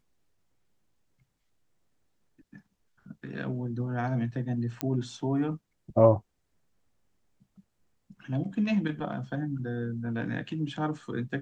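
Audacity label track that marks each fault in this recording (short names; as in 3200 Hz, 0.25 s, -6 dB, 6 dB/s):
4.810000	4.810000	pop -14 dBFS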